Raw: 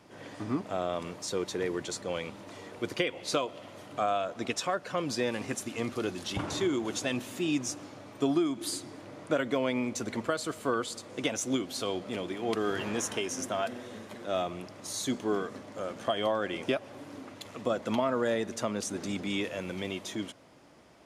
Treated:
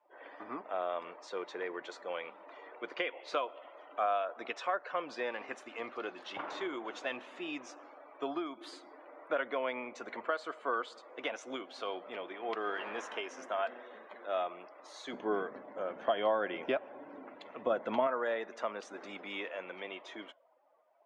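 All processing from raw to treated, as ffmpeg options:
-filter_complex "[0:a]asettb=1/sr,asplit=3[s0][s1][s2];[s0]atrim=end=15.134[s3];[s1]atrim=start=15.13:end=18.07,asetpts=PTS-STARTPTS,afade=t=in:d=0.004:c=qsin,afade=t=out:st=2.936:d=0.004:c=qsin,equalizer=f=130:w=0.44:g=12.5,bandreject=f=1200:w=14[s4];[s2]atrim=start=18.066[s5];[s3][s4]acrossfade=d=0.004:c1=hsin:c2=qsin[s6];[s6][s5]acrossfade=d=0.004:c1=qsin:c2=hsin,highpass=630,afftdn=nr=20:nf=-54,lowpass=2200"

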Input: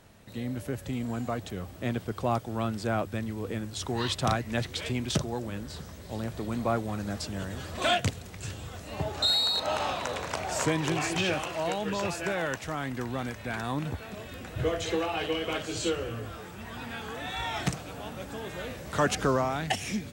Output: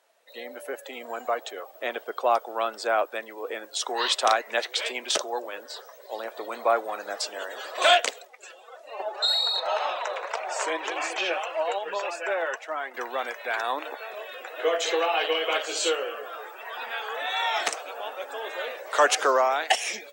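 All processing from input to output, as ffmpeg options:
-filter_complex "[0:a]asettb=1/sr,asplit=3[s0][s1][s2];[s0]atrim=end=8.254[s3];[s1]atrim=start=8.25:end=12.94,asetpts=PTS-STARTPTS,afade=t=in:d=0.004:c=qsin,afade=t=out:st=4.686:d=0.004:c=qsin,highshelf=f=3100:g=-4.5,flanger=delay=2.9:depth=3.3:regen=32:speed=1.8:shape=triangular[s4];[s2]atrim=start=12.936[s5];[s3][s4]acrossfade=d=0.004:c1=hsin:c2=qsin[s6];[s6][s5]acrossfade=d=0.004:c1=qsin:c2=hsin,highpass=f=480:w=0.5412,highpass=f=480:w=1.3066,afftdn=nr=15:nf=-49,volume=2.37"

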